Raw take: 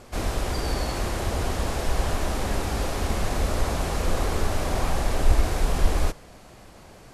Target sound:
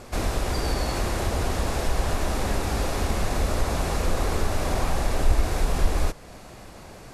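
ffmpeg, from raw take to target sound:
-filter_complex "[0:a]bandreject=f=3100:w=27,asplit=2[s0][s1];[s1]acompressor=threshold=0.0355:ratio=6,volume=1.26[s2];[s0][s2]amix=inputs=2:normalize=0,volume=0.708"

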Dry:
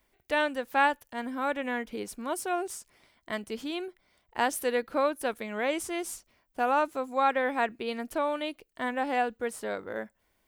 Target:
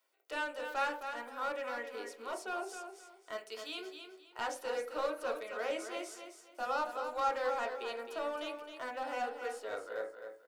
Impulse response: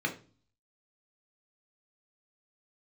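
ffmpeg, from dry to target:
-filter_complex "[0:a]asettb=1/sr,asplit=3[s0][s1][s2];[s0]atrim=end=3.384[s3];[s1]atrim=start=3.38:end=3.8,asetpts=PTS-STARTPTS,afade=t=in:d=0.004:c=qsin,afade=t=out:st=0.416:d=0.004:c=qsin,tiltshelf=f=1300:g=-5.5[s4];[s2]atrim=start=3.796[s5];[s3][s4]acrossfade=d=0.004:c1=hsin:c2=qsin[s6];[s6][s5]acrossfade=d=0.004:c1=qsin:c2=hsin,highpass=f=450:w=0.5412,highpass=f=450:w=1.3066,asplit=2[s7][s8];[s8]aeval=exprs='0.0398*(abs(mod(val(0)/0.0398+3,4)-2)-1)':c=same,volume=0.501[s9];[s7][s9]amix=inputs=2:normalize=0,acrossover=split=6900[s10][s11];[s11]acompressor=threshold=0.00282:ratio=4:attack=1:release=60[s12];[s10][s12]amix=inputs=2:normalize=0,aecho=1:1:264|528|792:0.398|0.107|0.029,asplit=2[s13][s14];[1:a]atrim=start_sample=2205,highshelf=f=2600:g=-7.5[s15];[s14][s15]afir=irnorm=-1:irlink=0,volume=0.447[s16];[s13][s16]amix=inputs=2:normalize=0,volume=0.398"

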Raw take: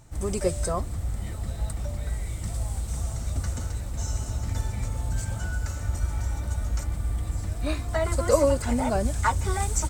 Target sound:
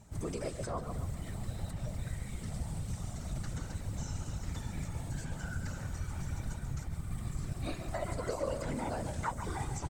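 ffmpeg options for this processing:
-filter_complex "[0:a]asettb=1/sr,asplit=3[s0][s1][s2];[s0]atrim=end=6.584[s3];[s1]atrim=start=6.58:end=7.11,asetpts=PTS-STARTPTS,afade=t=in:d=0.004:c=qsin,afade=t=out:st=0.526:d=0.004:c=qsin,acompressor=threshold=0.0447:ratio=6[s4];[s2]atrim=start=7.106[s5];[s3][s4]acrossfade=d=0.004:c1=hsin:c2=qsin[s6];[s6][s5]acrossfade=d=0.004:c1=qsin:c2=hsin,asplit=2[s7][s8];[s8]adelay=137,lowpass=f=2000:p=1,volume=0.376,asplit=2[s9][s10];[s10]adelay=137,lowpass=f=2000:p=1,volume=0.52,asplit=2[s11][s12];[s12]adelay=137,lowpass=f=2000:p=1,volume=0.52,asplit=2[s13][s14];[s14]adelay=137,lowpass=f=2000:p=1,volume=0.52,asplit=2[s15][s16];[s16]adelay=137,lowpass=f=2000:p=1,volume=0.52,asplit=2[s17][s18];[s18]adelay=137,lowpass=f=2000:p=1,volume=0.52[s19];[s7][s9][s11][s13][s15][s17][s19]amix=inputs=7:normalize=0,acrossover=split=1300|5000[s20][s21][s22];[s20]acompressor=threshold=0.0355:ratio=4[s23];[s21]acompressor=threshold=0.00708:ratio=4[s24];[s22]acompressor=threshold=0.00316:ratio=4[s25];[s23][s24][s25]amix=inputs=3:normalize=0,afftfilt=real='hypot(re,im)*cos(2*PI*random(0))':imag='hypot(re,im)*sin(2*PI*random(1))':win_size=512:overlap=0.75,volume=1.12"

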